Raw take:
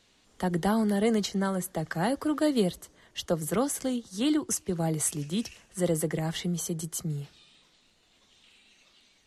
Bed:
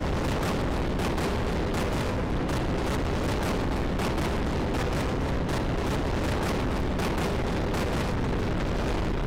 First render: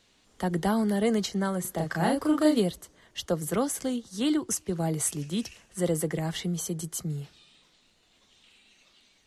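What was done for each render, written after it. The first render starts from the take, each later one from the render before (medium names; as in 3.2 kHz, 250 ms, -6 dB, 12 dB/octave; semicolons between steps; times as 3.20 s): 1.61–2.60 s: doubling 36 ms -2 dB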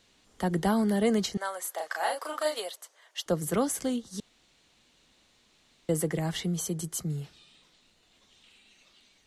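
1.37–3.26 s: high-pass 590 Hz 24 dB/octave; 4.20–5.89 s: room tone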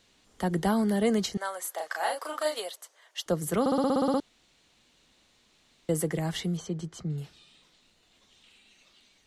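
3.60 s: stutter in place 0.06 s, 10 plays; 6.57–7.18 s: distance through air 150 m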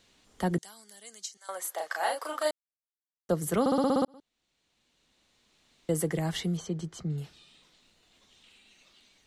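0.58–1.49 s: band-pass filter 7.2 kHz, Q 2; 2.51–3.29 s: mute; 4.05–6.11 s: fade in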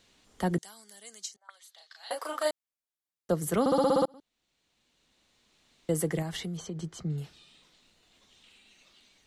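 1.36–2.11 s: auto-wah 640–4000 Hz, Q 4.5, up, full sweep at -34.5 dBFS; 3.71–4.12 s: comb 5.9 ms, depth 79%; 6.22–6.78 s: compression, threshold -32 dBFS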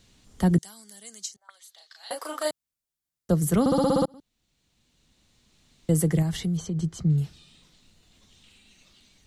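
tone controls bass +13 dB, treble +5 dB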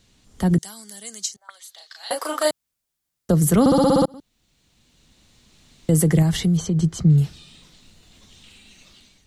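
peak limiter -16 dBFS, peak gain reduction 6 dB; level rider gain up to 8 dB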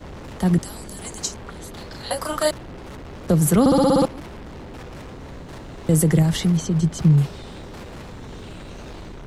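add bed -10 dB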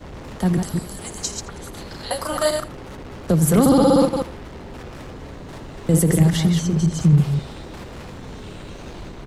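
chunks repeated in reverse 132 ms, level -5 dB; delay 82 ms -18 dB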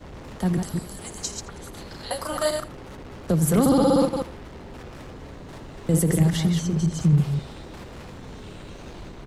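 trim -4 dB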